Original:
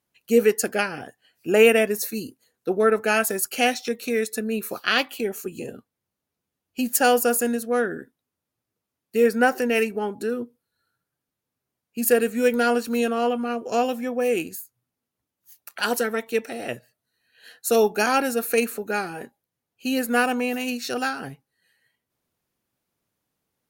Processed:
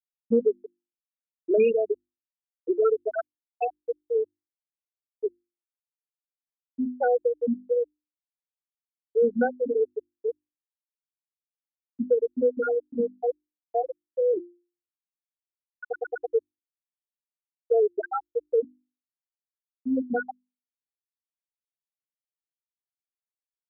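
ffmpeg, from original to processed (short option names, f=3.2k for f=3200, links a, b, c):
-filter_complex "[0:a]asplit=5[a][b][c][d][e];[a]atrim=end=15.932[f];[b]atrim=start=15.818:end=15.932[g];[c]atrim=start=15.818:end=15.932[h];[d]atrim=start=15.818:end=15.932[i];[e]atrim=start=16.258[j];[f][g]acrossfade=d=0.004:c1=hsin:c2=hsin[k];[k][h]acrossfade=d=0.004:c1=hsin:c2=hsin[l];[l][i]acrossfade=d=0.004:c1=hsin:c2=hsin[m];[m][j]acrossfade=d=0.004:c1=hsin:c2=hsin,afftfilt=real='re*gte(hypot(re,im),0.708)':imag='im*gte(hypot(re,im),0.708)':win_size=1024:overlap=0.75,bandreject=f=50:t=h:w=6,bandreject=f=100:t=h:w=6,bandreject=f=150:t=h:w=6,bandreject=f=200:t=h:w=6,bandreject=f=250:t=h:w=6,bandreject=f=300:t=h:w=6,bandreject=f=350:t=h:w=6,acrossover=split=480|1400[n][o][p];[n]acompressor=threshold=-24dB:ratio=4[q];[o]acompressor=threshold=-33dB:ratio=4[r];[p]acompressor=threshold=-44dB:ratio=4[s];[q][r][s]amix=inputs=3:normalize=0,volume=3dB"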